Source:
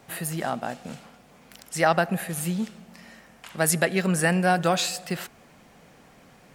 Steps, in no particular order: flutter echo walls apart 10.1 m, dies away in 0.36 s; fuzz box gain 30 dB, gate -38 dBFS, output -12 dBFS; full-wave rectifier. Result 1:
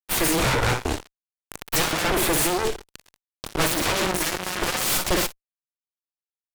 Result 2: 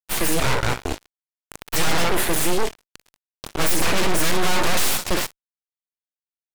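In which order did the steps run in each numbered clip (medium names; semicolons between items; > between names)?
full-wave rectifier > flutter echo > fuzz box; flutter echo > fuzz box > full-wave rectifier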